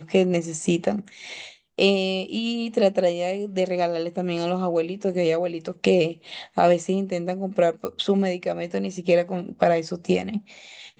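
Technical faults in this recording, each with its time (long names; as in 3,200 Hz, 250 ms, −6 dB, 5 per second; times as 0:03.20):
0:07.85: click −16 dBFS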